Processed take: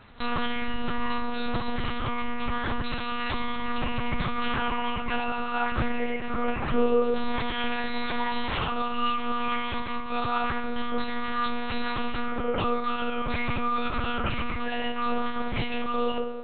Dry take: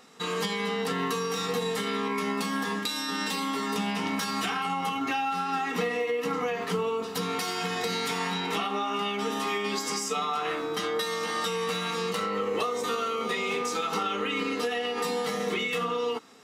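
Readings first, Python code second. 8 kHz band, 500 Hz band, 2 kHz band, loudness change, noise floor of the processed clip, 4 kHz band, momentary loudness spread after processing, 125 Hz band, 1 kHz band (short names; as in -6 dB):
under -40 dB, -1.5 dB, +0.5 dB, -0.5 dB, -31 dBFS, -3.0 dB, 4 LU, +4.0 dB, +1.0 dB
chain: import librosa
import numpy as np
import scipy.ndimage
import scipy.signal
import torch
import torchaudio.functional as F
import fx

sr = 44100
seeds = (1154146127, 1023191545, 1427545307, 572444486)

y = fx.rider(x, sr, range_db=10, speed_s=0.5)
y = fx.rev_fdn(y, sr, rt60_s=1.4, lf_ratio=1.5, hf_ratio=0.4, size_ms=33.0, drr_db=0.5)
y = fx.lpc_monotone(y, sr, seeds[0], pitch_hz=240.0, order=8)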